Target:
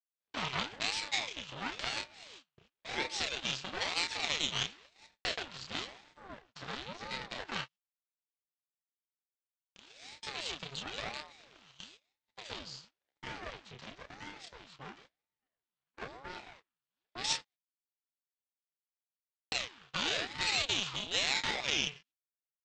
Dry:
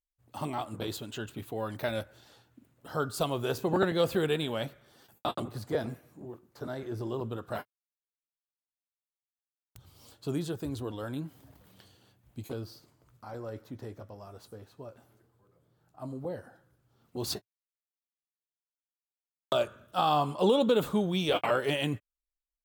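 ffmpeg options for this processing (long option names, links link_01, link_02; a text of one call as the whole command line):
ffmpeg -i in.wav -filter_complex "[0:a]asplit=2[link_01][link_02];[link_02]adelay=30,volume=-4dB[link_03];[link_01][link_03]amix=inputs=2:normalize=0,acrossover=split=1800[link_04][link_05];[link_04]acompressor=threshold=-36dB:ratio=6[link_06];[link_06][link_05]amix=inputs=2:normalize=0,agate=range=-25dB:threshold=-57dB:ratio=16:detection=peak,highpass=400,equalizer=frequency=460:width_type=q:width=4:gain=-8,equalizer=frequency=690:width_type=q:width=4:gain=-4,equalizer=frequency=1100:width_type=q:width=4:gain=7,equalizer=frequency=2000:width_type=q:width=4:gain=-3,equalizer=frequency=2900:width_type=q:width=4:gain=10,lowpass=frequency=5700:width=0.5412,lowpass=frequency=5700:width=1.3066,alimiter=level_in=1.5dB:limit=-24dB:level=0:latency=1:release=398,volume=-1.5dB,aresample=16000,aeval=exprs='max(val(0),0)':channel_layout=same,aresample=44100,equalizer=frequency=3500:width=0.39:gain=9,aeval=exprs='val(0)*sin(2*PI*520*n/s+520*0.75/0.98*sin(2*PI*0.98*n/s))':channel_layout=same,volume=4.5dB" out.wav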